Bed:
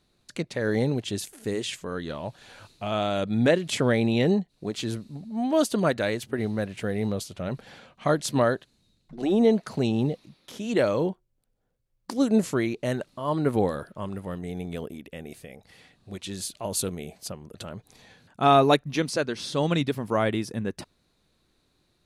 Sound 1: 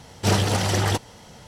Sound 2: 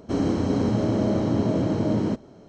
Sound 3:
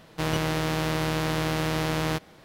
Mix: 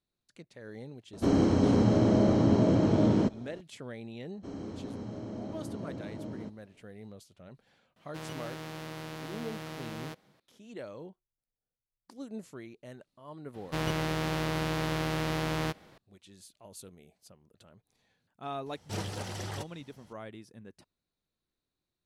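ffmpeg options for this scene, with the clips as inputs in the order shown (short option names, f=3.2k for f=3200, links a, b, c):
-filter_complex "[2:a]asplit=2[a][b];[3:a]asplit=2[c][d];[0:a]volume=-20dB[e];[c]highpass=100[f];[d]highshelf=f=6.2k:g=-3.5[g];[a]atrim=end=2.48,asetpts=PTS-STARTPTS,volume=-1dB,afade=t=in:d=0.004:c=hsin,afade=t=out:st=2.476:d=0.004:c=hsin,adelay=1130[h];[b]atrim=end=2.48,asetpts=PTS-STARTPTS,volume=-17.5dB,afade=t=in:d=0.004:c=hsin,afade=t=out:st=2.476:d=0.004:c=hsin,adelay=4340[i];[f]atrim=end=2.44,asetpts=PTS-STARTPTS,volume=-14.5dB,afade=t=in:d=0.004:c=hsin,afade=t=out:st=2.436:d=0.004:c=hsin,adelay=7960[j];[g]atrim=end=2.44,asetpts=PTS-STARTPTS,volume=-4.5dB,afade=t=in:d=0.004:c=hsin,afade=t=out:st=2.436:d=0.004:c=hsin,adelay=13540[k];[1:a]atrim=end=1.47,asetpts=PTS-STARTPTS,volume=-16.5dB,afade=t=in:d=0.004:c=hsin,afade=t=out:st=1.466:d=0.004:c=hsin,adelay=18660[l];[e][h][i][j][k][l]amix=inputs=6:normalize=0"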